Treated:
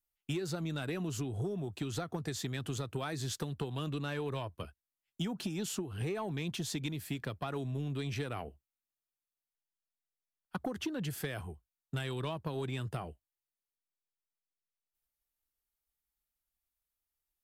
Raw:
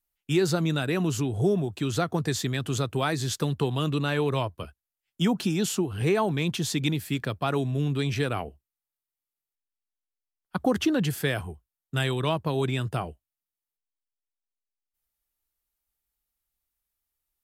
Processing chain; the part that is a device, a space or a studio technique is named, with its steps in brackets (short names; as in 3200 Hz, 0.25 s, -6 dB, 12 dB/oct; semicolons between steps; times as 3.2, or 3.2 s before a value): drum-bus smash (transient shaper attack +5 dB, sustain +1 dB; compressor 6:1, threshold -25 dBFS, peak gain reduction 11 dB; soft clip -20 dBFS, distortion -19 dB); gain -6.5 dB